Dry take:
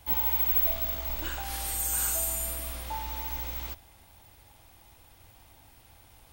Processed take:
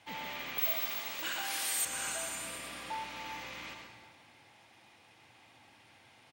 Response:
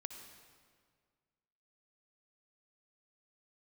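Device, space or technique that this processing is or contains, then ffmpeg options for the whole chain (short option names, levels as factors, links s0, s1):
PA in a hall: -filter_complex "[0:a]highpass=f=130:w=0.5412,highpass=f=130:w=1.3066,equalizer=f=2200:t=o:w=1.1:g=7,aecho=1:1:134:0.422[s0];[1:a]atrim=start_sample=2205[s1];[s0][s1]afir=irnorm=-1:irlink=0,asettb=1/sr,asplit=3[s2][s3][s4];[s2]atrim=end=0.584[s5];[s3]atrim=start=0.58:end=1.85,asetpts=PTS-STARTPTS,afade=t=in:d=0.004:c=qsin,afade=t=out:st=1.266:d=0.004:c=qsin,aemphasis=mode=production:type=bsi[s6];[s4]atrim=start=1.846[s7];[s5][s6]acrossfade=d=0.004:c1=hsin:c2=qsin[s8];[s8][s7]acrossfade=d=0.004:c1=qsin:c2=hsin,lowpass=6500"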